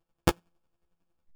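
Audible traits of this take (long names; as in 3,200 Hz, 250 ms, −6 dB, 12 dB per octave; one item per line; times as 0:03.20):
a buzz of ramps at a fixed pitch in blocks of 256 samples
chopped level 11 Hz, depth 60%, duty 25%
aliases and images of a low sample rate 2,000 Hz, jitter 0%
a shimmering, thickened sound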